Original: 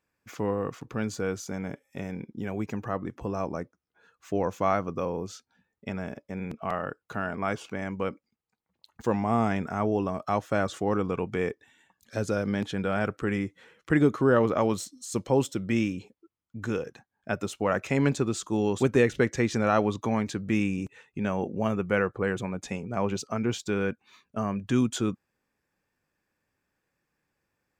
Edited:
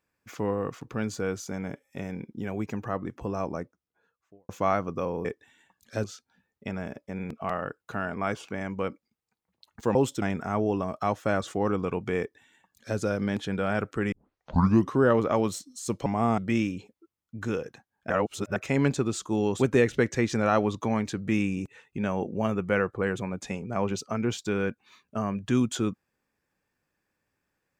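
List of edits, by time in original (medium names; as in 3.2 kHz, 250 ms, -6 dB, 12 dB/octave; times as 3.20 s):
3.50–4.49 s: studio fade out
9.16–9.48 s: swap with 15.32–15.59 s
11.45–12.24 s: copy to 5.25 s
13.38 s: tape start 0.84 s
17.31–17.77 s: reverse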